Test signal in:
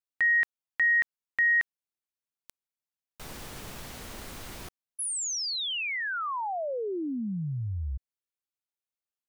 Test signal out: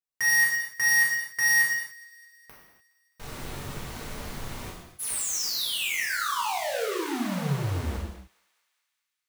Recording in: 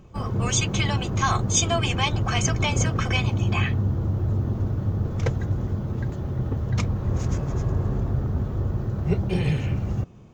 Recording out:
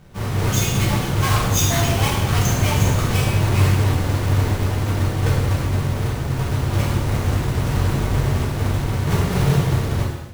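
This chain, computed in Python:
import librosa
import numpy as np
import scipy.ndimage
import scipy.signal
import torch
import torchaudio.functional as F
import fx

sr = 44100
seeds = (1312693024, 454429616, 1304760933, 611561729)

y = fx.halfwave_hold(x, sr)
y = fx.echo_thinned(y, sr, ms=208, feedback_pct=66, hz=1000.0, wet_db=-23)
y = fx.rev_gated(y, sr, seeds[0], gate_ms=320, shape='falling', drr_db=-6.5)
y = y * 10.0 ** (-7.5 / 20.0)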